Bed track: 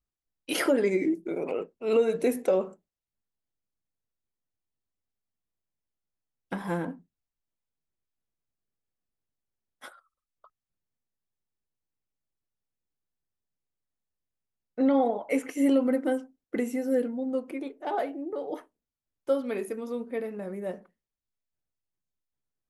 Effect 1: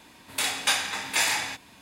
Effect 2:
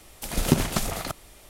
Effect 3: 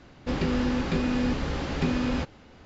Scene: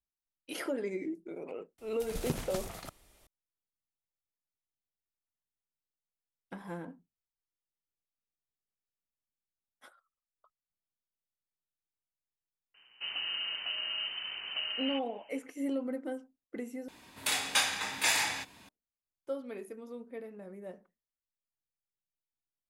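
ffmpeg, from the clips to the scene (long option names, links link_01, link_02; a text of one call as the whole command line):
ffmpeg -i bed.wav -i cue0.wav -i cue1.wav -i cue2.wav -filter_complex "[0:a]volume=-11dB[link_01];[3:a]lowpass=frequency=2600:width_type=q:width=0.5098,lowpass=frequency=2600:width_type=q:width=0.6013,lowpass=frequency=2600:width_type=q:width=0.9,lowpass=frequency=2600:width_type=q:width=2.563,afreqshift=-3100[link_02];[link_01]asplit=2[link_03][link_04];[link_03]atrim=end=16.884[link_05];[1:a]atrim=end=1.81,asetpts=PTS-STARTPTS,volume=-4dB[link_06];[link_04]atrim=start=18.686[link_07];[2:a]atrim=end=1.49,asetpts=PTS-STARTPTS,volume=-13.5dB,afade=type=in:duration=0.004:curve=hsin,afade=type=out:start_time=1.486:duration=0.004:curve=hsin,adelay=1780[link_08];[link_02]atrim=end=2.65,asetpts=PTS-STARTPTS,volume=-11dB,afade=type=in:duration=0.004:curve=hsin,afade=type=out:start_time=2.646:duration=0.004:curve=hsin,adelay=12740[link_09];[link_05][link_06]acrossfade=duration=0.004:curve1=hsin:curve2=hsin[link_10];[link_10][link_07]acrossfade=duration=0.004:curve1=hsin:curve2=hsin[link_11];[link_11][link_08][link_09]amix=inputs=3:normalize=0" out.wav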